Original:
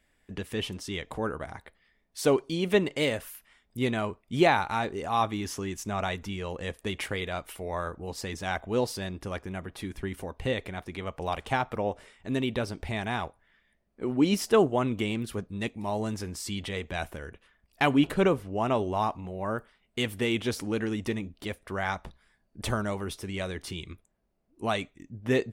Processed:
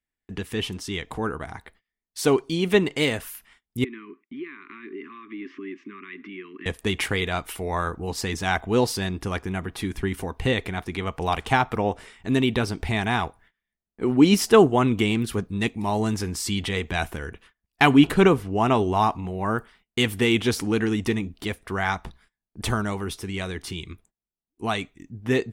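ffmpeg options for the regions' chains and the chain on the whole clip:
-filter_complex "[0:a]asettb=1/sr,asplit=3[a][b][c];[a]atrim=end=3.844[d];[b]atrim=start=3.84:end=6.66,asetpts=PTS-STARTPTS,afade=t=in:d=0.004:c=qsin,afade=t=out:st=2.816:d=0.004:c=qsin,acompressor=threshold=-36dB:ratio=16:attack=3.2:release=140:knee=1:detection=peak,asuperstop=centerf=640:order=12:qfactor=0.9,highpass=f=270:w=0.5412,highpass=f=270:w=1.3066,equalizer=f=270:t=q:w=4:g=5,equalizer=f=420:t=q:w=4:g=6,equalizer=f=870:t=q:w=4:g=-5,equalizer=f=1.4k:t=q:w=4:g=-9,equalizer=f=2.1k:t=q:w=4:g=4,lowpass=f=2.4k:w=0.5412,lowpass=f=2.4k:w=1.3066[e];[c]atrim=start=6.656[f];[d][e]acrossfade=d=0.004:c1=hsin:c2=qsin[g];[g][f]acrossfade=d=0.004:c1=qsin:c2=hsin,agate=range=-25dB:threshold=-59dB:ratio=16:detection=peak,equalizer=f=570:t=o:w=0.23:g=-11.5,dynaudnorm=f=260:g=31:m=3.5dB,volume=4.5dB"

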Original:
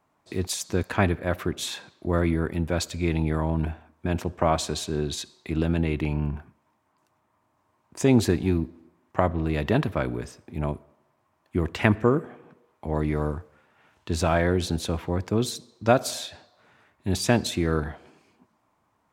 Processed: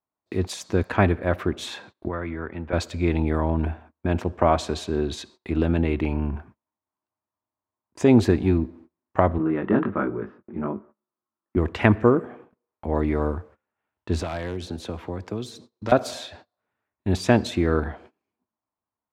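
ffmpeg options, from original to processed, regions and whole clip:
-filter_complex "[0:a]asettb=1/sr,asplit=3[a][b][c];[a]atrim=end=2.084[d];[b]atrim=start=2.08:end=2.73,asetpts=PTS-STARTPTS,afade=t=in:d=0.004:c=qsin,afade=t=out:st=0.646:d=0.004:c=qsin,lowpass=1.6k,tiltshelf=f=1.2k:g=-8,acrossover=split=96|1200[e][f][g];[e]acompressor=threshold=-43dB:ratio=4[h];[f]acompressor=threshold=-31dB:ratio=4[i];[g]acompressor=threshold=-38dB:ratio=4[j];[h][i][j]amix=inputs=3:normalize=0[k];[c]atrim=start=2.726[l];[d][k]acrossfade=d=0.004:c1=hsin:c2=qsin[m];[m][l]acrossfade=d=0.004:c1=qsin:c2=hsin,asettb=1/sr,asplit=3[n][o][p];[n]atrim=end=9.384[q];[o]atrim=start=9.38:end=11.57,asetpts=PTS-STARTPTS,afade=t=in:d=0.004:c=qsin,afade=t=out:st=2.186:d=0.004:c=qsin,highpass=140,equalizer=f=200:t=q:w=4:g=9,equalizer=f=340:t=q:w=4:g=6,equalizer=f=670:t=q:w=4:g=-5,equalizer=f=1.3k:t=q:w=4:g=8,equalizer=f=2.4k:t=q:w=4:g=-6,lowpass=f=2.5k:w=0.5412,lowpass=f=2.5k:w=1.3066,flanger=delay=18.5:depth=3.8:speed=1.3[r];[p]atrim=start=11.566[s];[q][r]acrossfade=d=0.004:c1=hsin:c2=qsin[t];[t][s]acrossfade=d=0.004:c1=qsin:c2=hsin,asettb=1/sr,asplit=3[u][v][w];[u]atrim=end=14.204[x];[v]atrim=start=14.2:end=15.92,asetpts=PTS-STARTPTS,afade=t=in:d=0.004:c=qsin,afade=t=out:st=1.716:d=0.004:c=qsin,highpass=55,aeval=exprs='0.237*(abs(mod(val(0)/0.237+3,4)-2)-1)':c=same,acrossover=split=170|3400[y][z][aa];[y]acompressor=threshold=-39dB:ratio=4[ab];[z]acompressor=threshold=-34dB:ratio=4[ac];[aa]acompressor=threshold=-38dB:ratio=4[ad];[ab][ac][ad]amix=inputs=3:normalize=0[ae];[w]atrim=start=15.916[af];[x][ae]acrossfade=d=0.004:c1=hsin:c2=qsin[ag];[ag][af]acrossfade=d=0.004:c1=qsin:c2=hsin,agate=range=-25dB:threshold=-48dB:ratio=16:detection=peak,lowpass=f=2.1k:p=1,equalizer=f=150:t=o:w=0.3:g=-9.5,volume=4dB"

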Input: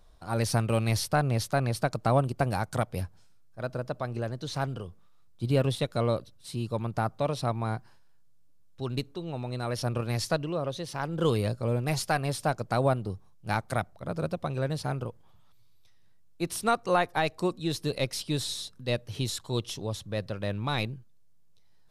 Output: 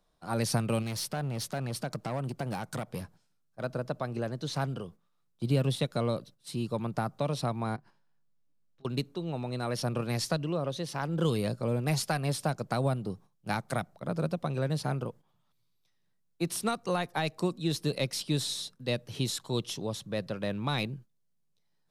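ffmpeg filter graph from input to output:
-filter_complex "[0:a]asettb=1/sr,asplit=3[a][b][c];[a]atrim=end=0.824[d];[b]atrim=start=0.82:end=3.64,asetpts=PTS-STARTPTS,afade=t=in:d=0.004:c=qsin,afade=t=out:st=2.816:d=0.004:c=qsin,acompressor=threshold=-28dB:ratio=5:attack=3.2:release=140:knee=1:detection=peak,asoftclip=type=hard:threshold=-28.5dB[e];[c]atrim=start=3.636[f];[d][e]acrossfade=d=0.004:c1=hsin:c2=qsin[g];[g][f]acrossfade=d=0.004:c1=qsin:c2=hsin,asettb=1/sr,asplit=3[h][i][j];[h]atrim=end=7.764[k];[i]atrim=start=7.76:end=8.85,asetpts=PTS-STARTPTS,afade=t=in:d=0.004:c=qsin,afade=t=out:st=1.086:d=0.004:c=qsin,lowpass=f=3.5k:p=1,acompressor=threshold=-52dB:ratio=5:attack=3.2:release=140:knee=1:detection=peak,asplit=2[l][m];[m]adelay=20,volume=-3dB[n];[l][n]amix=inputs=2:normalize=0,atrim=end_sample=48069[o];[j]atrim=start=8.846[p];[k][o]acrossfade=d=0.004:c1=hsin:c2=qsin[q];[q][p]acrossfade=d=0.004:c1=qsin:c2=hsin,agate=range=-9dB:threshold=-46dB:ratio=16:detection=peak,lowshelf=f=110:t=q:w=1.5:g=-10,acrossover=split=210|3000[r][s][t];[s]acompressor=threshold=-28dB:ratio=6[u];[r][u][t]amix=inputs=3:normalize=0"

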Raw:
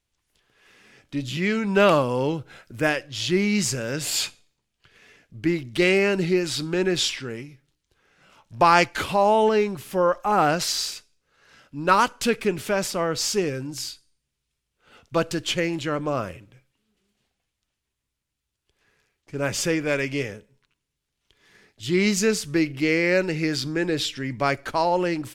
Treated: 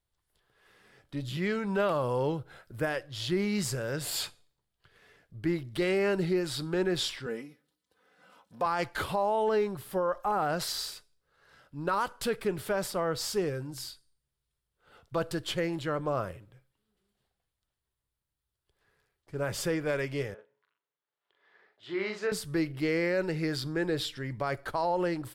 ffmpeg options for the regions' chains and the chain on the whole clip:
-filter_complex "[0:a]asettb=1/sr,asplit=3[a][b][c];[a]atrim=end=7.264[d];[b]atrim=start=7.26:end=8.66,asetpts=PTS-STARTPTS,afade=t=in:d=0.004:c=qsin,afade=t=out:st=1.396:d=0.004:c=qsin,highpass=170,equalizer=f=230:t=o:w=1.7:g=3,aecho=1:1:4:0.79,atrim=end_sample=61740[e];[c]atrim=start=8.656[f];[d][e]acrossfade=d=0.004:c1=hsin:c2=qsin[g];[g][f]acrossfade=d=0.004:c1=qsin:c2=hsin,asettb=1/sr,asplit=3[h][i][j];[h]atrim=end=20.344[k];[i]atrim=start=20.34:end=22.32,asetpts=PTS-STARTPTS,afade=t=in:d=0.004:c=qsin,afade=t=out:st=1.976:d=0.004:c=qsin,highpass=490,lowpass=2.5k,asplit=2[l][m];[m]adelay=42,volume=-4.5dB[n];[l][n]amix=inputs=2:normalize=0,atrim=end_sample=87318[o];[j]atrim=start=22.316[p];[k][o]acrossfade=d=0.004:c1=hsin:c2=qsin[q];[q][p]acrossfade=d=0.004:c1=qsin:c2=hsin,equalizer=f=250:t=o:w=0.67:g=-8,equalizer=f=2.5k:t=o:w=0.67:g=-9,equalizer=f=6.3k:t=o:w=0.67:g=-10,alimiter=limit=-17dB:level=0:latency=1:release=45,volume=-3dB"

